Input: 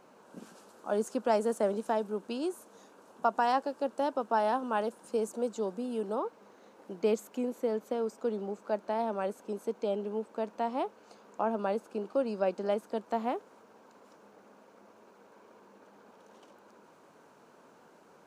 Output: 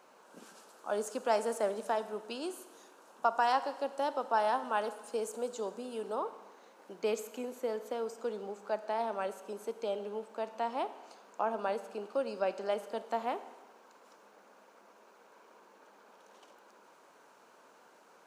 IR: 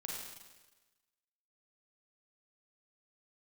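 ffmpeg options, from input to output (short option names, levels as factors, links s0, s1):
-filter_complex "[0:a]highpass=f=760:p=1,asplit=2[s0][s1];[1:a]atrim=start_sample=2205[s2];[s1][s2]afir=irnorm=-1:irlink=0,volume=0.376[s3];[s0][s3]amix=inputs=2:normalize=0"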